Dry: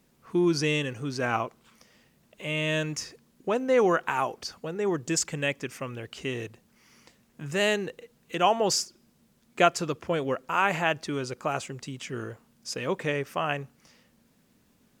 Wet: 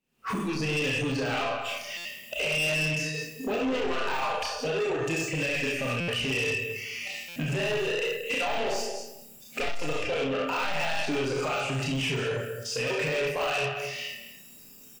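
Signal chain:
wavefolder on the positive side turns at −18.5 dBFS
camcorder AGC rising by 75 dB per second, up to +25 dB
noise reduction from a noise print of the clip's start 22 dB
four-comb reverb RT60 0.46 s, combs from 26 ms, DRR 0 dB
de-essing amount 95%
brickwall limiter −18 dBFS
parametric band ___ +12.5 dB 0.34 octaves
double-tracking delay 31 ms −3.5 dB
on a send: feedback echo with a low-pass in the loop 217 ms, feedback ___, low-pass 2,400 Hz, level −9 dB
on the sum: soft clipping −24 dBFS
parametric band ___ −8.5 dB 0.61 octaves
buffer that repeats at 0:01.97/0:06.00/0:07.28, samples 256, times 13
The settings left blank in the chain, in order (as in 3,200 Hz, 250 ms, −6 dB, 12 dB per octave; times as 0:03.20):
2,700 Hz, 18%, 85 Hz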